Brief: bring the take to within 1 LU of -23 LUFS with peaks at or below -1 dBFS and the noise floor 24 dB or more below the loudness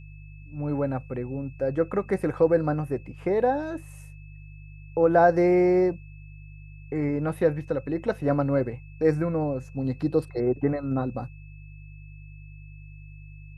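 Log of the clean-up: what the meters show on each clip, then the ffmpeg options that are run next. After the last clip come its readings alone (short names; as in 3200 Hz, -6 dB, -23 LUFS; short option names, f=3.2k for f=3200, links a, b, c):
hum 50 Hz; harmonics up to 150 Hz; hum level -40 dBFS; steady tone 2600 Hz; tone level -55 dBFS; loudness -25.5 LUFS; peak -7.0 dBFS; loudness target -23.0 LUFS
-> -af "bandreject=f=50:t=h:w=4,bandreject=f=100:t=h:w=4,bandreject=f=150:t=h:w=4"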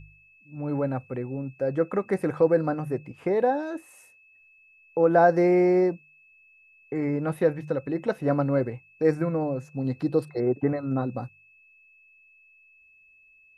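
hum none; steady tone 2600 Hz; tone level -55 dBFS
-> -af "bandreject=f=2.6k:w=30"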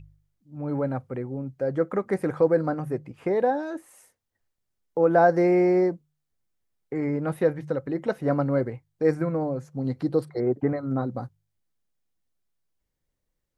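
steady tone none; loudness -25.5 LUFS; peak -7.0 dBFS; loudness target -23.0 LUFS
-> -af "volume=2.5dB"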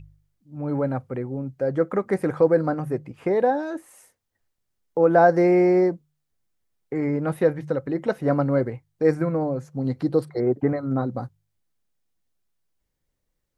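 loudness -23.0 LUFS; peak -4.5 dBFS; noise floor -78 dBFS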